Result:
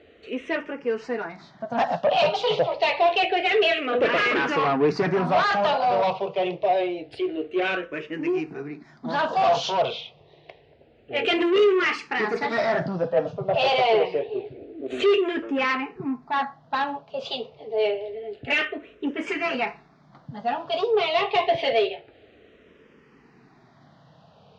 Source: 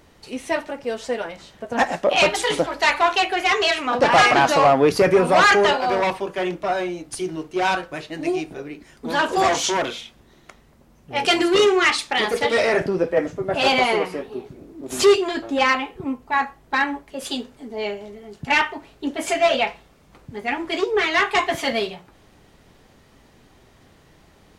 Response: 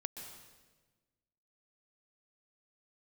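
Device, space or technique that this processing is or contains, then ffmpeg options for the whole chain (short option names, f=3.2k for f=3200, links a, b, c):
barber-pole phaser into a guitar amplifier: -filter_complex "[0:a]asplit=2[a][b];[b]afreqshift=-0.27[c];[a][c]amix=inputs=2:normalize=1,asoftclip=type=tanh:threshold=-20dB,highpass=97,equalizer=f=140:t=q:w=4:g=6,equalizer=f=450:t=q:w=4:g=8,equalizer=f=670:t=q:w=4:g=7,equalizer=f=2.7k:t=q:w=4:g=4,lowpass=f=4.5k:w=0.5412,lowpass=f=4.5k:w=1.3066"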